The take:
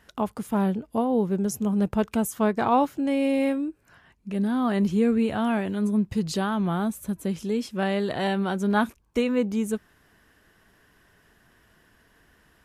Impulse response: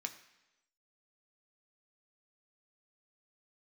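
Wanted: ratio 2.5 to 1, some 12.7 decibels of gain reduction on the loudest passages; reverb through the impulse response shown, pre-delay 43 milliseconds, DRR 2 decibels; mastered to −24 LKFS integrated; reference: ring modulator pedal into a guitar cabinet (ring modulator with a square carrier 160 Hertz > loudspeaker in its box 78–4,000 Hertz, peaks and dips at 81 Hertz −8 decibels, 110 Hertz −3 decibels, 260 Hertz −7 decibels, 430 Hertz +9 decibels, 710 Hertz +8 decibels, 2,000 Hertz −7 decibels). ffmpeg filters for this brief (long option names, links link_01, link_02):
-filter_complex "[0:a]acompressor=threshold=-37dB:ratio=2.5,asplit=2[link_01][link_02];[1:a]atrim=start_sample=2205,adelay=43[link_03];[link_02][link_03]afir=irnorm=-1:irlink=0,volume=-1dB[link_04];[link_01][link_04]amix=inputs=2:normalize=0,aeval=exprs='val(0)*sgn(sin(2*PI*160*n/s))':channel_layout=same,highpass=78,equalizer=frequency=81:width_type=q:width=4:gain=-8,equalizer=frequency=110:width_type=q:width=4:gain=-3,equalizer=frequency=260:width_type=q:width=4:gain=-7,equalizer=frequency=430:width_type=q:width=4:gain=9,equalizer=frequency=710:width_type=q:width=4:gain=8,equalizer=frequency=2000:width_type=q:width=4:gain=-7,lowpass=frequency=4000:width=0.5412,lowpass=frequency=4000:width=1.3066,volume=7.5dB"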